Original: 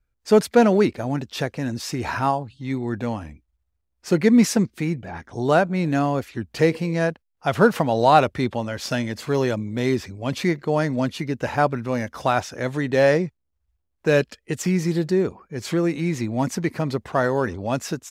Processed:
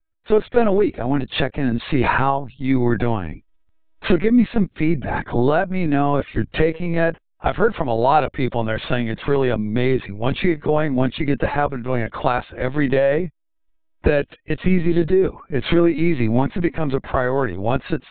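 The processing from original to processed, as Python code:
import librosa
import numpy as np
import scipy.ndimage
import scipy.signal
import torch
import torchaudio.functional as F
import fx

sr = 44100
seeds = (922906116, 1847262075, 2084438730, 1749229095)

y = fx.recorder_agc(x, sr, target_db=-6.0, rise_db_per_s=17.0, max_gain_db=30)
y = fx.lpc_vocoder(y, sr, seeds[0], excitation='pitch_kept', order=16)
y = y * librosa.db_to_amplitude(-1.0)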